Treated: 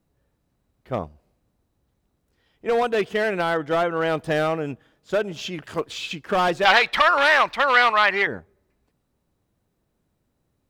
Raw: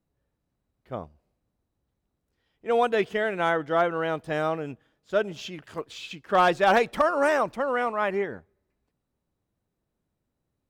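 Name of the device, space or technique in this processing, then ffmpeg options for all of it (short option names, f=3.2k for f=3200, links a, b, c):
limiter into clipper: -filter_complex "[0:a]alimiter=limit=-19dB:level=0:latency=1:release=463,asoftclip=type=hard:threshold=-24dB,asettb=1/sr,asplit=3[a][b][c];[a]atrim=end=6.654[d];[b]atrim=start=6.65:end=8.27,asetpts=PTS-STARTPTS,afade=t=in:d=0.004:c=qsin,afade=t=out:st=1.616:d=0.004:c=qsin,equalizer=f=125:t=o:w=1:g=-8,equalizer=f=250:t=o:w=1:g=-7,equalizer=f=500:t=o:w=1:g=-4,equalizer=f=1k:t=o:w=1:g=5,equalizer=f=2k:t=o:w=1:g=10,equalizer=f=4k:t=o:w=1:g=12,equalizer=f=8k:t=o:w=1:g=-3[e];[c]atrim=start=8.266[f];[d][e]acrossfade=d=0.004:c1=hsin:c2=qsin[g];[g][f]acrossfade=d=0.004:c1=qsin:c2=hsin,volume=8dB"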